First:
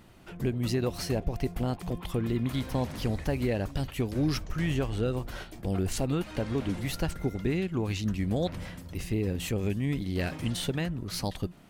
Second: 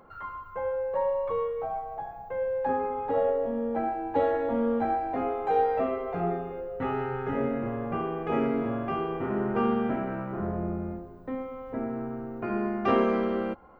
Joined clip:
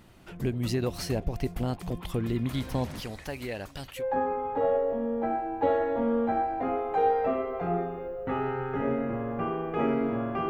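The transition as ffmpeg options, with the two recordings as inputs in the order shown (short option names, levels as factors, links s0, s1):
-filter_complex "[0:a]asettb=1/sr,asplit=3[s0][s1][s2];[s0]atrim=end=3.004[s3];[s1]atrim=start=3:end=4.04,asetpts=PTS-STARTPTS,afade=t=in:d=0.004:c=qsin,afade=t=out:st=1.036:d=0.004:c=qsin,lowshelf=f=460:g=-12[s4];[s2]atrim=start=4.036[s5];[s3][s4]acrossfade=d=0.004:c1=hsin:c2=qsin[s6];[s6][s5]acrossfade=d=0.004:c1=qsin:c2=hsin,apad=whole_dur=10.49,atrim=end=10.49,atrim=end=4.04,asetpts=PTS-STARTPTS[s7];[1:a]atrim=start=2.49:end=9.02,asetpts=PTS-STARTPTS[s8];[s7][s8]acrossfade=d=0.08:c1=tri:c2=tri"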